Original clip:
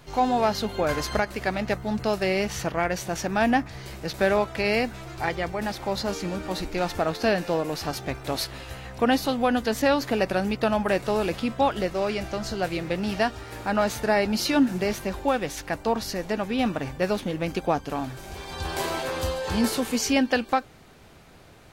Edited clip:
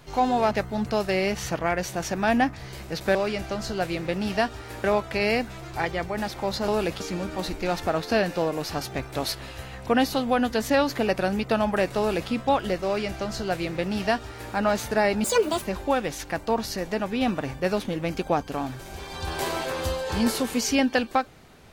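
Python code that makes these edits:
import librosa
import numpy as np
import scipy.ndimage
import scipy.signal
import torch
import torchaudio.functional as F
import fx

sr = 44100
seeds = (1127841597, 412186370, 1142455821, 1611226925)

y = fx.edit(x, sr, fx.cut(start_s=0.51, length_s=1.13),
    fx.duplicate(start_s=11.1, length_s=0.32, to_s=6.12),
    fx.duplicate(start_s=11.97, length_s=1.69, to_s=4.28),
    fx.speed_span(start_s=14.36, length_s=0.64, speed=1.67), tone=tone)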